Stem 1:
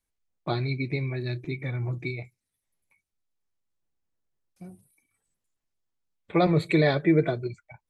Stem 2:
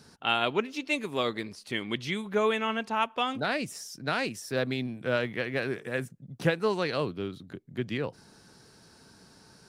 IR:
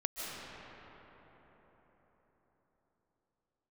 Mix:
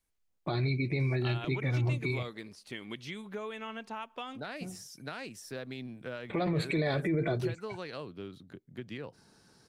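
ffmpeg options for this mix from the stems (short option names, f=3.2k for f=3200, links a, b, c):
-filter_complex "[0:a]alimiter=limit=-15dB:level=0:latency=1:release=87,volume=1.5dB[a];[1:a]acompressor=threshold=-30dB:ratio=6,adelay=1000,volume=-6.5dB[b];[a][b]amix=inputs=2:normalize=0,alimiter=limit=-22.5dB:level=0:latency=1:release=20"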